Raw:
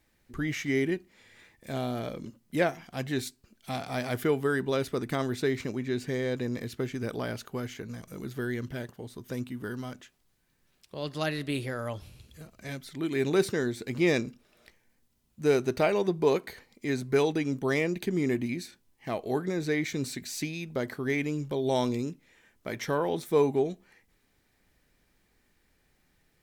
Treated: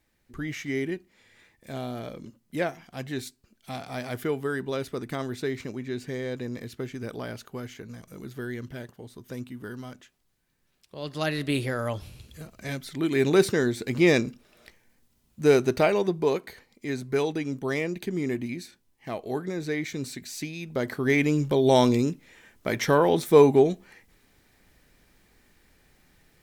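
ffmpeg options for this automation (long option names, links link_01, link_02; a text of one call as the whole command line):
ffmpeg -i in.wav -af "volume=14dB,afade=type=in:start_time=10.95:duration=0.56:silence=0.446684,afade=type=out:start_time=15.59:duration=0.78:silence=0.501187,afade=type=in:start_time=20.54:duration=0.77:silence=0.354813" out.wav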